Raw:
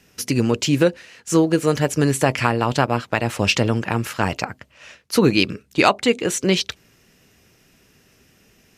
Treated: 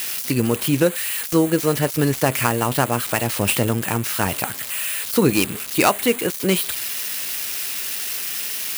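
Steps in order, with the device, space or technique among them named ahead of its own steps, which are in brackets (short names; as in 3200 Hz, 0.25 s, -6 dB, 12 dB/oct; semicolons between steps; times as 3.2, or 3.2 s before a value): budget class-D amplifier (switching dead time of 0.085 ms; switching spikes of -11 dBFS); gain -1 dB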